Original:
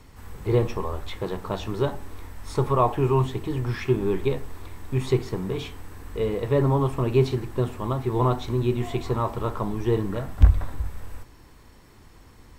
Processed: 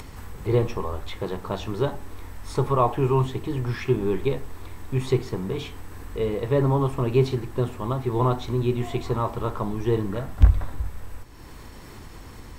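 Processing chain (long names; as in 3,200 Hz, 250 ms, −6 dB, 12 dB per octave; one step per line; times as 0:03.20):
upward compression, threshold −31 dBFS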